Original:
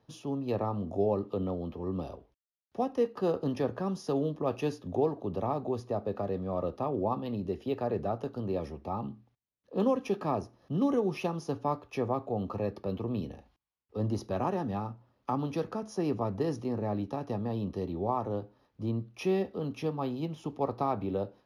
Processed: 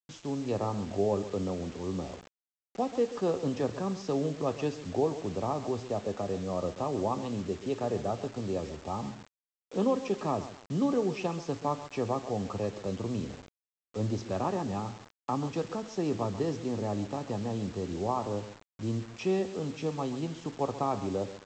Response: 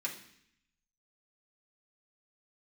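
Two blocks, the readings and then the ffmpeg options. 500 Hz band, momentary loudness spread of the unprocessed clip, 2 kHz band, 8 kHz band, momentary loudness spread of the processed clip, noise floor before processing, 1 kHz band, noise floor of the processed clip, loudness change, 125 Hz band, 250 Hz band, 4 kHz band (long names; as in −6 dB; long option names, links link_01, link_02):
0.0 dB, 7 LU, +2.0 dB, can't be measured, 7 LU, −76 dBFS, 0.0 dB, below −85 dBFS, 0.0 dB, 0.0 dB, 0.0 dB, +4.5 dB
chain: -af "aecho=1:1:134|268|402:0.2|0.0638|0.0204,aresample=16000,acrusher=bits=7:mix=0:aa=0.000001,aresample=44100"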